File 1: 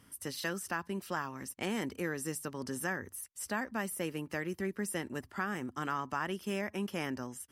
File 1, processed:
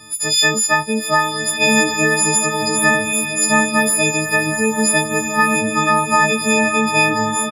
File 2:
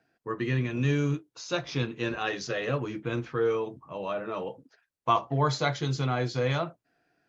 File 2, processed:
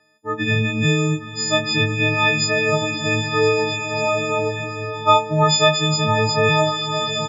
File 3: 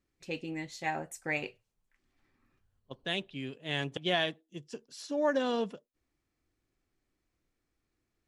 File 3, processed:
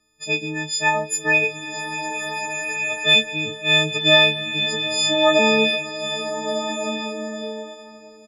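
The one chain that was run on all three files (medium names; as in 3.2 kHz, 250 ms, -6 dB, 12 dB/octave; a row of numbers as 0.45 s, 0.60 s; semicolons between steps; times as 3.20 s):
partials quantised in pitch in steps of 6 st; low-pass 7.4 kHz 12 dB/octave; harmonic-percussive split percussive -8 dB; doubling 27 ms -12 dB; swelling reverb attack 1550 ms, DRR 4 dB; peak normalisation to -2 dBFS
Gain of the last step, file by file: +16.5 dB, +7.0 dB, +10.5 dB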